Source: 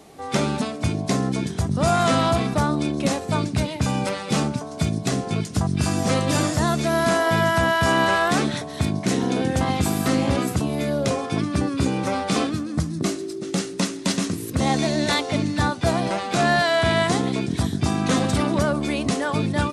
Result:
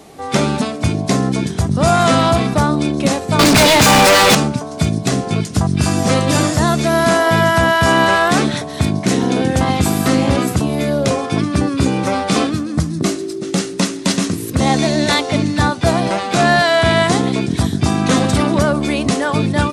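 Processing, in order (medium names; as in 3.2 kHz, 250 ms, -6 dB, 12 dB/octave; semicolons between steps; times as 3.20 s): 3.39–4.35 s: overdrive pedal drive 38 dB, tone 7.6 kHz, clips at -9.5 dBFS; trim +6.5 dB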